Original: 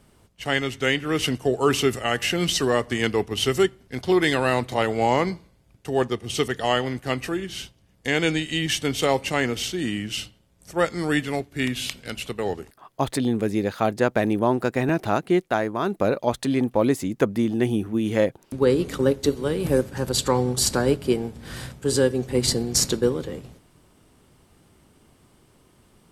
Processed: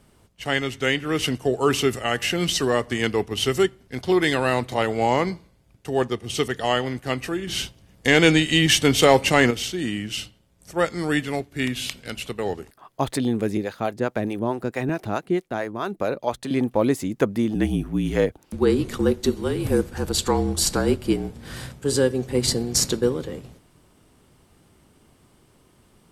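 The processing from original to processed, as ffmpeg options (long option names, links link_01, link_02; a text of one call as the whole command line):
ffmpeg -i in.wav -filter_complex "[0:a]asettb=1/sr,asplit=3[link_01][link_02][link_03];[link_01]atrim=end=7.474[link_04];[link_02]atrim=start=7.47:end=9.51,asetpts=PTS-STARTPTS,afade=type=in:duration=0.004:curve=qsin,afade=type=out:start_time=2.036:duration=0.004:curve=qsin,acontrast=89[link_05];[link_03]atrim=start=9.506[link_06];[link_04][link_05]acrossfade=duration=0.004:curve1=hsin:curve2=qsin[link_07];[link_07][link_06]acrossfade=duration=0.004:curve1=qsin:curve2=hsin,asettb=1/sr,asplit=3[link_08][link_09][link_10];[link_08]atrim=end=13.574[link_11];[link_09]atrim=start=13.57:end=16.51,asetpts=PTS-STARTPTS,afade=type=in:duration=0.004:curve=qsin,afade=type=out:start_time=2.936:duration=0.004:curve=qsin,acrossover=split=450[link_12][link_13];[link_12]aeval=exprs='val(0)*(1-0.7/2+0.7/2*cos(2*PI*4.6*n/s))':channel_layout=same[link_14];[link_13]aeval=exprs='val(0)*(1-0.7/2-0.7/2*cos(2*PI*4.6*n/s))':channel_layout=same[link_15];[link_14][link_15]amix=inputs=2:normalize=0[link_16];[link_10]atrim=start=16.506[link_17];[link_11][link_16]acrossfade=duration=0.004:curve1=hsin:curve2=qsin[link_18];[link_18][link_17]acrossfade=duration=0.004:curve1=qsin:curve2=hsin,asettb=1/sr,asplit=3[link_19][link_20][link_21];[link_19]atrim=end=17.554[link_22];[link_20]atrim=start=17.55:end=21.3,asetpts=PTS-STARTPTS,afade=type=in:duration=0.004:curve=qsin,afade=type=out:start_time=3.746:duration=0.004:curve=qsin,afreqshift=-44[link_23];[link_21]atrim=start=21.296[link_24];[link_22][link_23]acrossfade=duration=0.004:curve1=hsin:curve2=qsin[link_25];[link_25][link_24]acrossfade=duration=0.004:curve1=qsin:curve2=hsin" out.wav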